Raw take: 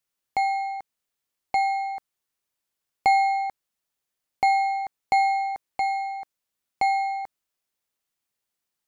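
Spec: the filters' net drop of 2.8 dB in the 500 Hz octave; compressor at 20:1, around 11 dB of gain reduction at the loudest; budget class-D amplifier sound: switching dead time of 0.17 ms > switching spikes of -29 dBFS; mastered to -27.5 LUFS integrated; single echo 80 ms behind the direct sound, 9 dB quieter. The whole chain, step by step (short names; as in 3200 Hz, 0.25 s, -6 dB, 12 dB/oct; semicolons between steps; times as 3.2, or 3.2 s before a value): bell 500 Hz -4.5 dB; compressor 20:1, threshold -28 dBFS; echo 80 ms -9 dB; switching dead time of 0.17 ms; switching spikes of -29 dBFS; gain +8 dB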